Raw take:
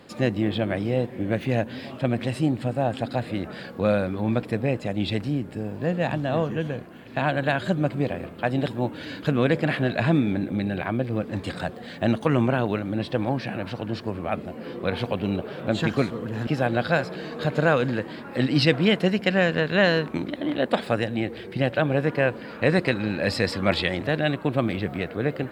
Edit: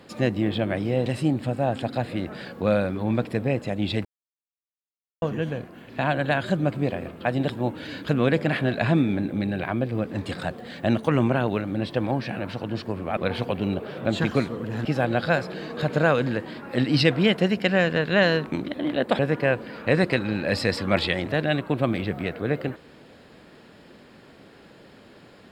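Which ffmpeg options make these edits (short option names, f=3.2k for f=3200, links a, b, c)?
-filter_complex "[0:a]asplit=6[a][b][c][d][e][f];[a]atrim=end=1.062[g];[b]atrim=start=2.238:end=5.23,asetpts=PTS-STARTPTS,afade=t=out:st=2.988:d=0.004:c=hsin[h];[c]atrim=start=5.23:end=6.4,asetpts=PTS-STARTPTS,volume=0[i];[d]atrim=start=6.4:end=14.352,asetpts=PTS-STARTPTS,afade=t=in:d=0.004:c=hsin[j];[e]atrim=start=14.788:end=20.812[k];[f]atrim=start=21.938[l];[h][i][j]concat=n=3:v=0:a=1[m];[g][m]acrossfade=d=0.004:c1=hsin:c2=hsin[n];[n][k]acrossfade=d=0.004:c1=hsin:c2=hsin[o];[o][l]acrossfade=d=0.004:c1=hsin:c2=hsin"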